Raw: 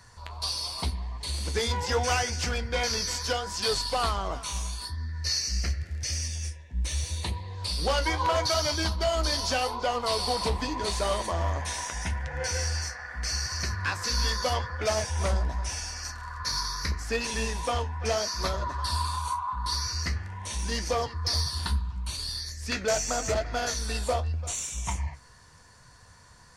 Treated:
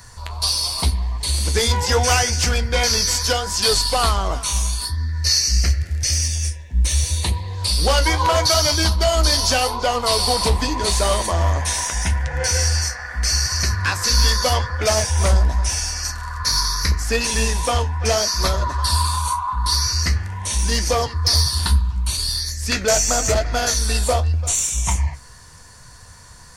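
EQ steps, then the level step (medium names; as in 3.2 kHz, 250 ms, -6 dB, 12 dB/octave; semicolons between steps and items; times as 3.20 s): bass shelf 67 Hz +8 dB; treble shelf 7 kHz +11 dB; +7.5 dB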